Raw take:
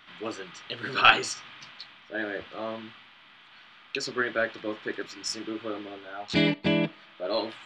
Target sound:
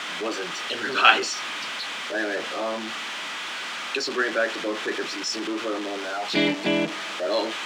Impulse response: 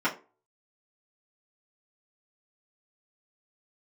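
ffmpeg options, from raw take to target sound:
-filter_complex "[0:a]aeval=exprs='val(0)+0.5*0.0398*sgn(val(0))':c=same,highpass=110,acrossover=split=200 7600:gain=0.0794 1 0.0631[a][b][c];[a][b][c]amix=inputs=3:normalize=0,volume=1.5dB"

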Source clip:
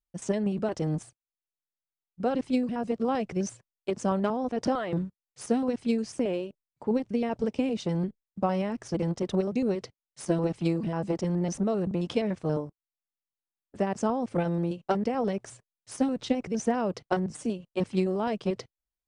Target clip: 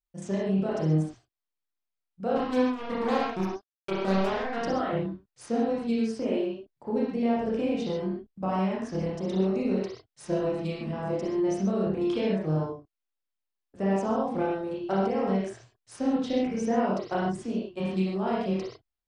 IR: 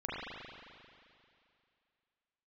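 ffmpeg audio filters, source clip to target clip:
-filter_complex "[0:a]asettb=1/sr,asplit=3[a][b][c];[a]atrim=end=2.354[d];[b]atrim=start=2.35:end=4.6,asetpts=PTS-STARTPTS,afade=t=in:d=0.004:c=qsin,afade=t=out:st=2.246:d=0.004:c=qsin,acrusher=bits=3:mix=0:aa=0.5[e];[c]atrim=start=4.596[f];[d][e]acrossfade=d=0.004:c1=hsin:c2=qsin[g];[g][f]acrossfade=d=0.004:c1=qsin:c2=hsin[h];[1:a]atrim=start_sample=2205,afade=t=out:st=0.27:d=0.01,atrim=end_sample=12348,asetrate=61740,aresample=44100[i];[h][i]afir=irnorm=-1:irlink=0"

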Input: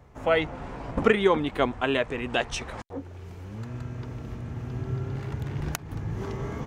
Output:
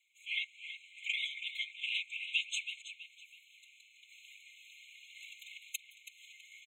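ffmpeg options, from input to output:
-filter_complex "[0:a]asettb=1/sr,asplit=3[a][b][c];[a]atrim=end=4.094[d];[b]atrim=start=4.09:end=5.58,asetpts=PTS-STARTPTS,afade=t=in:d=0.004:c=qsin,afade=t=out:st=1.486:d=0.004:c=qsin,acontrast=35[e];[c]atrim=start=5.576[f];[d][e]acrossfade=d=0.004:c1=hsin:c2=qsin[g];[g][f]acrossfade=d=0.004:c1=qsin:c2=hsin,afftfilt=real='hypot(re,im)*cos(2*PI*random(0))':imag='hypot(re,im)*sin(2*PI*random(1))':win_size=512:overlap=0.75,asplit=2[h][i];[i]adelay=326,lowpass=f=4.7k:p=1,volume=-9dB,asplit=2[j][k];[k]adelay=326,lowpass=f=4.7k:p=1,volume=0.42,asplit=2[l][m];[m]adelay=326,lowpass=f=4.7k:p=1,volume=0.42,asplit=2[n][o];[o]adelay=326,lowpass=f=4.7k:p=1,volume=0.42,asplit=2[p][q];[q]adelay=326,lowpass=f=4.7k:p=1,volume=0.42[r];[j][l][n][p][r]amix=inputs=5:normalize=0[s];[h][s]amix=inputs=2:normalize=0,afftfilt=real='re*eq(mod(floor(b*sr/1024/2100),2),1)':imag='im*eq(mod(floor(b*sr/1024/2100),2),1)':win_size=1024:overlap=0.75,volume=4.5dB"

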